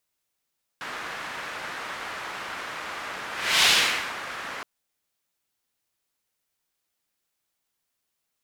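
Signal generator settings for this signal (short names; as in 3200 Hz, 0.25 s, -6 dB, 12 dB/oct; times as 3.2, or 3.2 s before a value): whoosh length 3.82 s, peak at 2.84, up 0.36 s, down 0.56 s, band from 1500 Hz, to 3300 Hz, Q 1.2, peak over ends 17 dB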